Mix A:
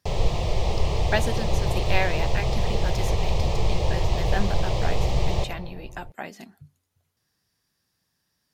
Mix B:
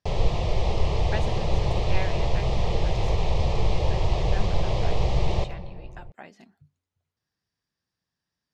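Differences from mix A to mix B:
speech -8.5 dB; master: add distance through air 70 m

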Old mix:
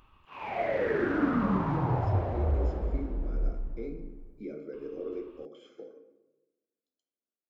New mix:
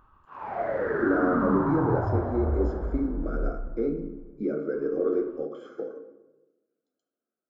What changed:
speech +11.0 dB; master: add resonant high shelf 1.9 kHz -8.5 dB, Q 3

